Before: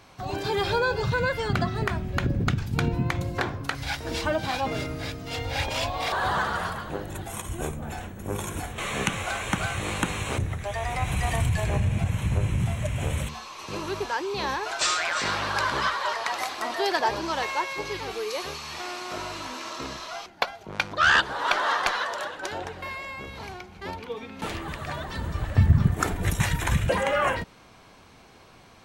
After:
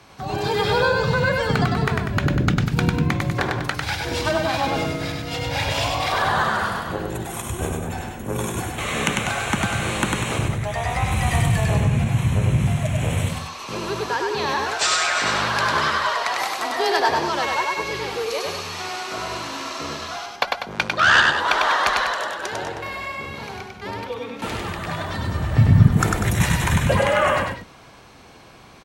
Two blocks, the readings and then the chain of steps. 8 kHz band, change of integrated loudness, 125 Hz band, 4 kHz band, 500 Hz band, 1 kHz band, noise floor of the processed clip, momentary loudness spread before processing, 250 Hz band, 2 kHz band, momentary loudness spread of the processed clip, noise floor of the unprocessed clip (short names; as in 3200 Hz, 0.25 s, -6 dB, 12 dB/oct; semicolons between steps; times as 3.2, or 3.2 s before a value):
+5.5 dB, +5.5 dB, +6.0 dB, +5.5 dB, +5.5 dB, +5.5 dB, -41 dBFS, 11 LU, +7.0 dB, +5.5 dB, 11 LU, -52 dBFS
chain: frequency shift +18 Hz; loudspeakers at several distances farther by 34 m -3 dB, 67 m -9 dB; gain +3.5 dB